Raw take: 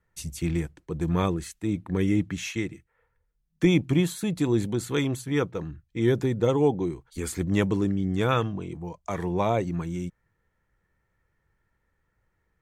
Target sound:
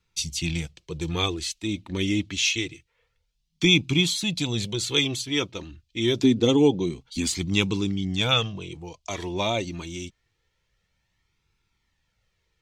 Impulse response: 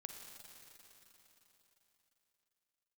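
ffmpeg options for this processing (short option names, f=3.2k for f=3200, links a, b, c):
-filter_complex "[0:a]asettb=1/sr,asplit=3[a][b][c];[a]atrim=end=6.234[d];[b]atrim=start=6.23:end=7.27,asetpts=PTS-STARTPTS,afade=t=in:d=0.004:c=qsin,afade=t=out:st=1.036:d=0.004:c=qsin,equalizer=f=250:w=1.9:g=13.5[e];[c]atrim=start=7.266[f];[d][e]acrossfade=d=0.004:c1=hsin:c2=qsin[g];[g][f]acrossfade=d=0.004:c1=qsin:c2=hsin,acrossover=split=5800[h][i];[h]aexciter=amount=11:drive=2.6:freq=2.5k[j];[i]asoftclip=type=hard:threshold=-36dB[k];[j][k]amix=inputs=2:normalize=0,flanger=delay=0.8:depth=2.5:regen=-36:speed=0.26:shape=sinusoidal,volume=1.5dB"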